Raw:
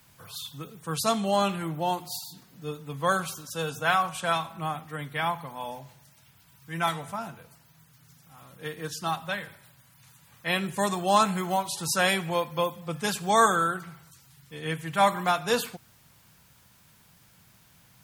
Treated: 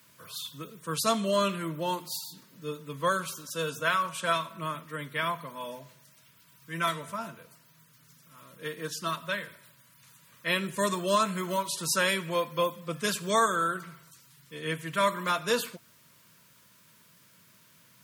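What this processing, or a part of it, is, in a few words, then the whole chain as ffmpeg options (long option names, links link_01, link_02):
PA system with an anti-feedback notch: -af "highpass=170,asuperstop=centerf=780:order=12:qfactor=3.8,alimiter=limit=-14.5dB:level=0:latency=1:release=380"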